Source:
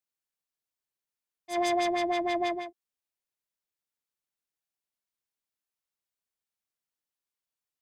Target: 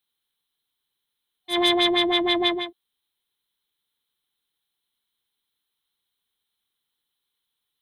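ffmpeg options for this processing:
-af "superequalizer=8b=0.355:13b=3.55:14b=0.355:15b=0.282,volume=2.66"

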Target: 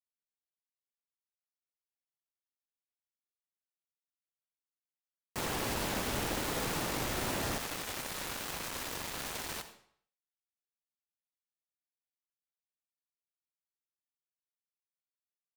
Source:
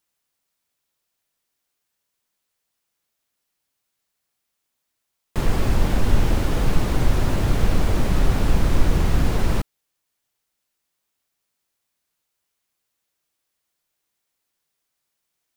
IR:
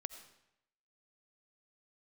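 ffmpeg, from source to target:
-filter_complex "[0:a]asetnsamples=n=441:p=0,asendcmd='7.58 highpass f 1200',highpass=f=440:p=1,acrusher=bits=4:mix=0:aa=0.000001[s0];[1:a]atrim=start_sample=2205,asetrate=61740,aresample=44100[s1];[s0][s1]afir=irnorm=-1:irlink=0"

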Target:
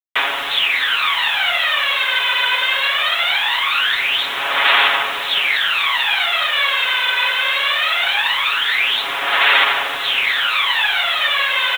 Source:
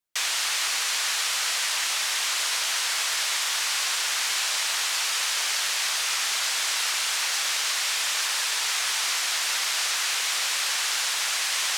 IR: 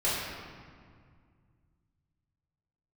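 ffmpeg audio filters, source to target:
-filter_complex "[0:a]asettb=1/sr,asplit=3[s0][s1][s2];[s0]atrim=end=7.784[s3];[s1]atrim=start=7.78:end=8.18,asetpts=PTS-STARTPTS,afade=t=in:d=0.004:c=qsin,afade=t=out:st=0.396:d=0.004:c=qsin,afreqshift=-31[s4];[s2]atrim=start=8.176[s5];[s3][s4]acrossfade=d=0.004:c1=hsin:c2=qsin[s6];[s6][s5]acrossfade=d=0.004:c1=qsin:c2=hsin,aphaser=in_gain=1:out_gain=1:delay=2:decay=0.7:speed=0.21:type=sinusoidal,asplit=2[s7][s8];[s8]aeval=exprs='sgn(val(0))*max(abs(val(0))-0.00944,0)':c=same,volume=0.447[s9];[s7][s9]amix=inputs=2:normalize=0,aecho=1:1:7.2:0.67,asplit=2[s10][s11];[s11]aecho=0:1:690:0.126[s12];[s10][s12]amix=inputs=2:normalize=0,aresample=8000,aresample=44100,acrusher=bits=6:mix=0:aa=0.000001,volume=1.78"

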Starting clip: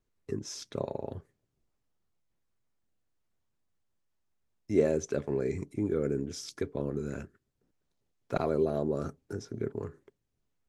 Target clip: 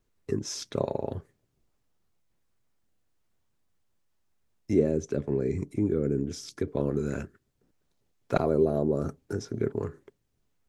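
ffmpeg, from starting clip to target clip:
-filter_complex "[0:a]asettb=1/sr,asplit=3[s0][s1][s2];[s0]atrim=end=4.734[s3];[s1]atrim=start=4.73:end=6.68,asetpts=PTS-STARTPTS,afade=t=in:d=0.004:c=qsin,afade=t=out:st=1.946:d=0.004:c=qsin,acrossover=split=400[s4][s5];[s5]acompressor=threshold=0.00355:ratio=2[s6];[s4][s6]amix=inputs=2:normalize=0[s7];[s2]atrim=start=6.676[s8];[s3][s7]acrossfade=d=0.004:c1=hsin:c2=qsin[s9];[s9][s8]acrossfade=d=0.004:c1=qsin:c2=hsin,asettb=1/sr,asplit=3[s10][s11][s12];[s10]atrim=end=8.404[s13];[s11]atrim=start=8.4:end=9.09,asetpts=PTS-STARTPTS,afade=t=in:d=0.004:c=qsin,afade=t=out:st=0.686:d=0.004:c=qsin,equalizer=f=3000:t=o:w=2.9:g=-10[s14];[s12]atrim=start=9.086[s15];[s13][s14]acrossfade=d=0.004:c1=hsin:c2=qsin[s16];[s16][s15]acrossfade=d=0.004:c1=qsin:c2=hsin,volume=1.88"

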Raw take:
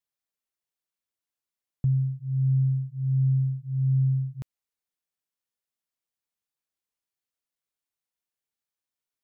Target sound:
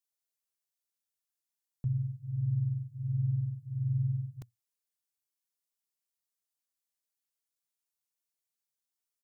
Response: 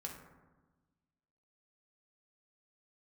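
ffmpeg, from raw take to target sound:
-filter_complex "[0:a]adynamicequalizer=threshold=0.01:dfrequency=120:dqfactor=7.4:tfrequency=120:tqfactor=7.4:attack=5:release=100:ratio=0.375:range=3:mode=boostabove:tftype=bell,asplit=2[s0][s1];[s1]asetrate=37084,aresample=44100,atempo=1.18921,volume=0.447[s2];[s0][s2]amix=inputs=2:normalize=0,bass=f=250:g=-3,treble=f=4000:g=9,volume=0.422"

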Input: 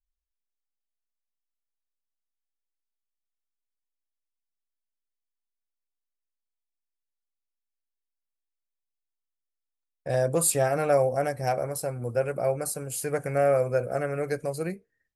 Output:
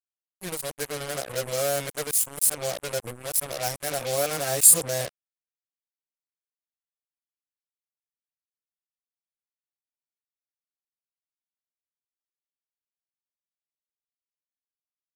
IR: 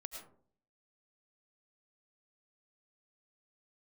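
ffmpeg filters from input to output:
-af "areverse,acrusher=bits=4:mix=0:aa=0.5,crystalizer=i=5:c=0,volume=0.501"

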